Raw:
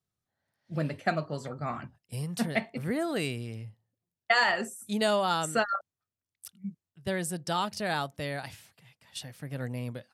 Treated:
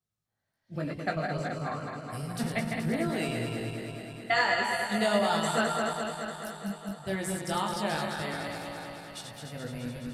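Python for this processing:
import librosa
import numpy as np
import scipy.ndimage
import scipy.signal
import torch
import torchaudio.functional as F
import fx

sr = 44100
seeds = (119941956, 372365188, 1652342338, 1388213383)

y = fx.reverse_delay_fb(x, sr, ms=106, feedback_pct=85, wet_db=-5)
y = fx.chorus_voices(y, sr, voices=2, hz=0.34, base_ms=19, depth_ms=1.6, mix_pct=40)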